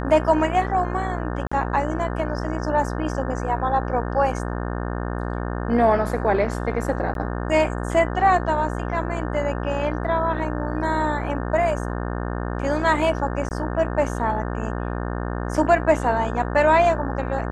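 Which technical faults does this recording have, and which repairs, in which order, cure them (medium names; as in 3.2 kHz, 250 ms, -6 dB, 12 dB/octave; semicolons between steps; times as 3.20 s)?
buzz 60 Hz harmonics 30 -27 dBFS
1.47–1.51 s: dropout 45 ms
7.14–7.15 s: dropout 12 ms
13.49–13.51 s: dropout 19 ms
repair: de-hum 60 Hz, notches 30; interpolate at 1.47 s, 45 ms; interpolate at 7.14 s, 12 ms; interpolate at 13.49 s, 19 ms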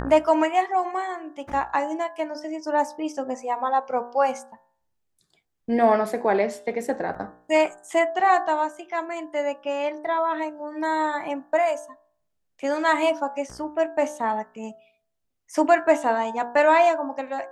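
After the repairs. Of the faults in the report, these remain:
nothing left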